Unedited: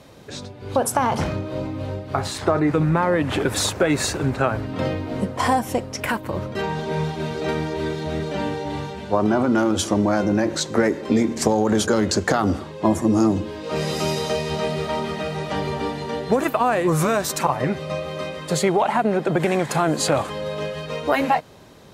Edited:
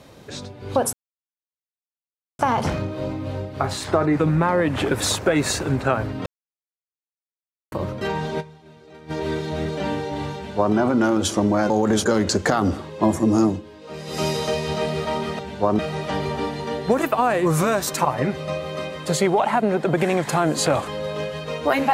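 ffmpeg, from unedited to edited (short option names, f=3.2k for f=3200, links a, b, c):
-filter_complex "[0:a]asplit=11[a][b][c][d][e][f][g][h][i][j][k];[a]atrim=end=0.93,asetpts=PTS-STARTPTS,afade=t=out:st=0.926:d=0.004:c=hsin,apad=pad_dur=1.46[l];[b]atrim=start=0.93:end=4.8,asetpts=PTS-STARTPTS,afade=t=in:d=0.004:c=hsin,afade=t=out:st=3.866:d=0.004:c=hsin[m];[c]atrim=start=4.8:end=6.26,asetpts=PTS-STARTPTS,volume=0[n];[d]atrim=start=6.26:end=7.07,asetpts=PTS-STARTPTS,afade=t=in:d=0.004:c=hsin,afade=t=out:st=0.68:d=0.13:c=exp:silence=0.0944061[o];[e]atrim=start=7.07:end=7.52,asetpts=PTS-STARTPTS,volume=-20.5dB[p];[f]atrim=start=7.52:end=10.242,asetpts=PTS-STARTPTS,afade=t=in:d=0.13:c=exp:silence=0.0944061[q];[g]atrim=start=11.518:end=13.44,asetpts=PTS-STARTPTS,afade=t=out:st=1.762:d=0.16:silence=0.298538[r];[h]atrim=start=13.44:end=13.88,asetpts=PTS-STARTPTS,volume=-10.5dB[s];[i]atrim=start=13.88:end=15.212,asetpts=PTS-STARTPTS,afade=t=in:d=0.16:silence=0.298538[t];[j]atrim=start=8.888:end=9.292[u];[k]atrim=start=15.208[v];[l][m][n][o][p][q]concat=n=6:v=0:a=1[w];[r][s][t]concat=n=3:v=0:a=1[x];[w][x]acrossfade=d=0.004:c1=hsin:c2=hsin[y];[y][u]acrossfade=d=0.004:c1=hsin:c2=hsin[z];[z][v]acrossfade=d=0.004:c1=hsin:c2=hsin"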